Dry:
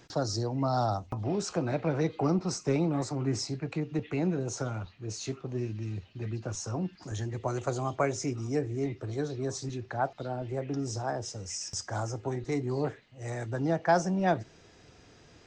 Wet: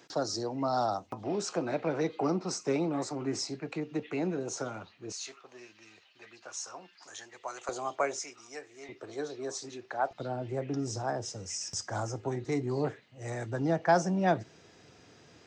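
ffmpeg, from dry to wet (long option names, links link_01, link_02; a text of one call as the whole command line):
ffmpeg -i in.wav -af "asetnsamples=nb_out_samples=441:pad=0,asendcmd='5.12 highpass f 920;7.69 highpass f 460;8.19 highpass f 1000;8.89 highpass f 390;10.11 highpass f 110',highpass=240" out.wav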